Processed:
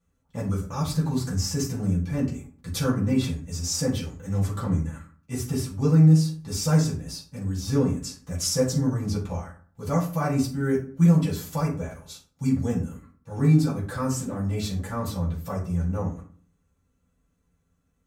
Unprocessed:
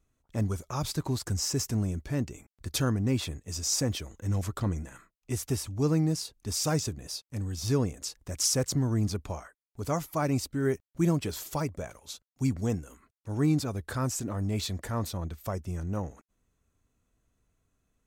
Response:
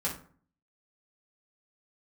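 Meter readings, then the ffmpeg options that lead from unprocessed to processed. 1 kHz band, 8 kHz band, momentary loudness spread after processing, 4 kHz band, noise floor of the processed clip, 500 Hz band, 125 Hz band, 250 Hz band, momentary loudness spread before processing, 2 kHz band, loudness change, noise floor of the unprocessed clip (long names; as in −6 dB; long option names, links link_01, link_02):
+3.0 dB, 0.0 dB, 14 LU, +0.5 dB, −71 dBFS, +3.5 dB, +6.5 dB, +6.5 dB, 11 LU, +2.5 dB, +5.5 dB, below −85 dBFS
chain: -filter_complex "[1:a]atrim=start_sample=2205[link_01];[0:a][link_01]afir=irnorm=-1:irlink=0,volume=-3dB"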